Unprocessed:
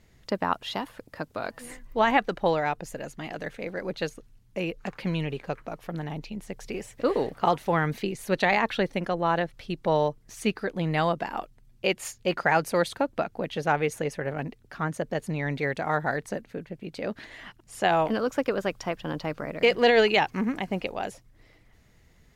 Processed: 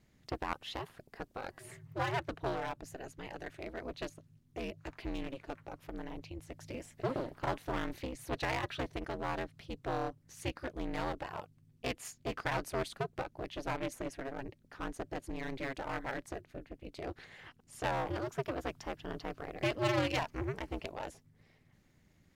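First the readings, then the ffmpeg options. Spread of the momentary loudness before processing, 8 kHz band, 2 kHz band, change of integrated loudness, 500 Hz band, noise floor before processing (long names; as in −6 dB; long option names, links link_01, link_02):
14 LU, −8.0 dB, −12.0 dB, −12.0 dB, −12.5 dB, −59 dBFS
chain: -af "aeval=exprs='clip(val(0),-1,0.0447)':channel_layout=same,aeval=exprs='val(0)*sin(2*PI*130*n/s)':channel_layout=same,volume=-6dB"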